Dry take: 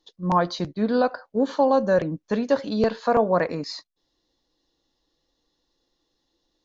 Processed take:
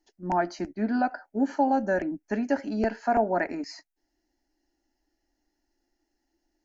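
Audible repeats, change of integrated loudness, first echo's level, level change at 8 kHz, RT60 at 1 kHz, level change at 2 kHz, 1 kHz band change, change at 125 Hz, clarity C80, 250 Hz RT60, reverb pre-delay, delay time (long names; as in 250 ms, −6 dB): no echo audible, −4.5 dB, no echo audible, can't be measured, no reverb audible, −0.5 dB, −2.5 dB, −9.0 dB, no reverb audible, no reverb audible, no reverb audible, no echo audible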